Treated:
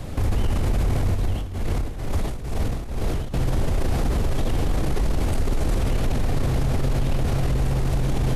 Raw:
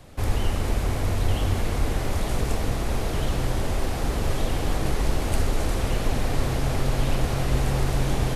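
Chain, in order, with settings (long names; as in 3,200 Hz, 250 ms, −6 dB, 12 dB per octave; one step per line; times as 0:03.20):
low-shelf EQ 360 Hz +8 dB
brickwall limiter −24 dBFS, peak gain reduction 20.5 dB
0:01.15–0:03.34: shaped tremolo triangle 2.2 Hz, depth 80%
level +9 dB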